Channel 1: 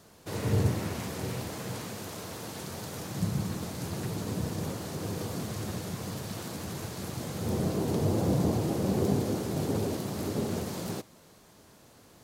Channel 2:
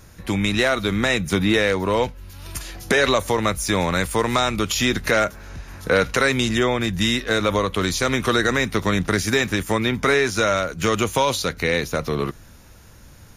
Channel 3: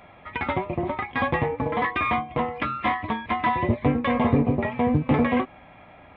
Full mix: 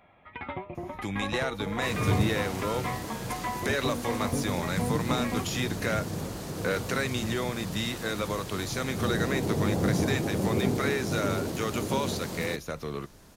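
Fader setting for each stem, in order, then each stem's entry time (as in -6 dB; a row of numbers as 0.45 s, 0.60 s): 0.0 dB, -11.5 dB, -10.5 dB; 1.55 s, 0.75 s, 0.00 s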